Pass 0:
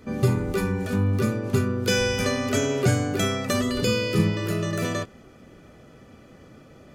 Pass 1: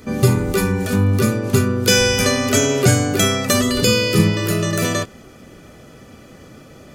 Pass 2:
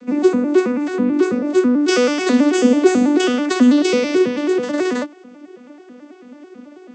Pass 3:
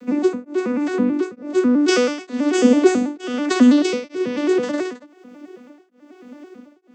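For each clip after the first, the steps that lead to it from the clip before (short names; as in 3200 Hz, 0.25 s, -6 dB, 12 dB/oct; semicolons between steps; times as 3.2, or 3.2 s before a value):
high shelf 4300 Hz +8.5 dB; gain +6.5 dB
arpeggiated vocoder minor triad, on B3, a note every 0.109 s; gain +2.5 dB
requantised 12-bit, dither none; beating tremolo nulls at 1.1 Hz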